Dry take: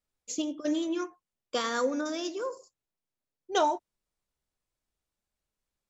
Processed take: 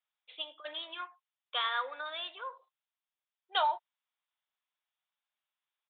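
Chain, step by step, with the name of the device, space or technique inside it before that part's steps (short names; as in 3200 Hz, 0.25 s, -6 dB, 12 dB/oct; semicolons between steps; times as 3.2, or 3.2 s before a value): musical greeting card (downsampling 8000 Hz; HPF 800 Hz 24 dB/oct; bell 3500 Hz +5 dB 0.53 oct)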